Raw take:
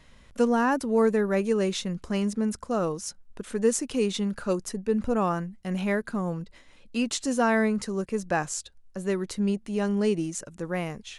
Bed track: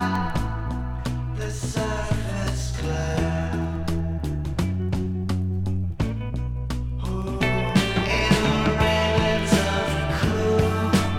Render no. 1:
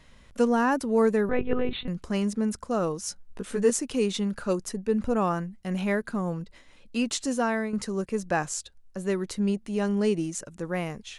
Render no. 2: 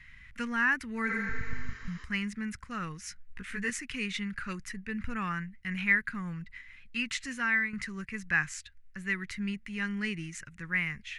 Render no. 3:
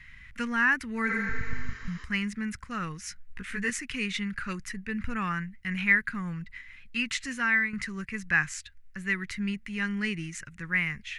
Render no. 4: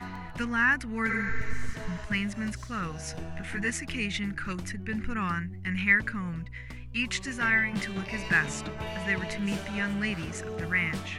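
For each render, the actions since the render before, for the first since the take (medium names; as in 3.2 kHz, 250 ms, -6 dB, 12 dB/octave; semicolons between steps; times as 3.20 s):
1.29–1.88 s: monotone LPC vocoder at 8 kHz 250 Hz; 3.02–3.70 s: doubling 16 ms -3.5 dB; 7.22–7.73 s: fade out, to -9 dB
FFT filter 120 Hz 0 dB, 620 Hz -26 dB, 2 kHz +12 dB, 3.4 kHz -4 dB, 8.7 kHz -11 dB; 1.11–2.01 s: spectral replace 240–7300 Hz both
trim +3 dB
add bed track -16 dB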